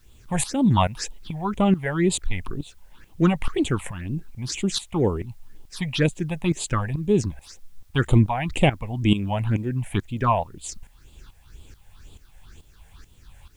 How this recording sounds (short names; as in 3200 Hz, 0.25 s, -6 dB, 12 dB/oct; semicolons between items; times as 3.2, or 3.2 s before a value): phasing stages 6, 2 Hz, lowest notch 320–1600 Hz; tremolo saw up 2.3 Hz, depth 80%; a quantiser's noise floor 12-bit, dither triangular